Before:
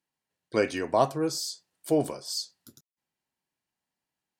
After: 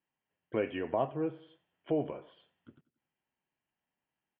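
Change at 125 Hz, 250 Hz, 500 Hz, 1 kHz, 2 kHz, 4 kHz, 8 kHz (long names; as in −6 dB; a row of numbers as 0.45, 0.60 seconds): −6.0 dB, −6.0 dB, −6.5 dB, −9.0 dB, −9.0 dB, −19.5 dB, below −40 dB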